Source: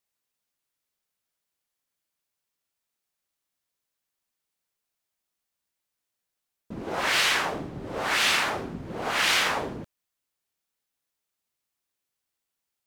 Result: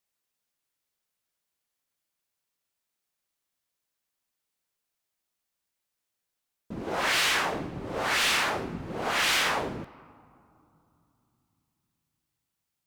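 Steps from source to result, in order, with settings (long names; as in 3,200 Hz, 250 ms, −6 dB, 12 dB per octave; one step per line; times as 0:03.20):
on a send at −18.5 dB: convolution reverb RT60 2.9 s, pre-delay 6 ms
on the sum: hard clipping −21 dBFS, distortion −13 dB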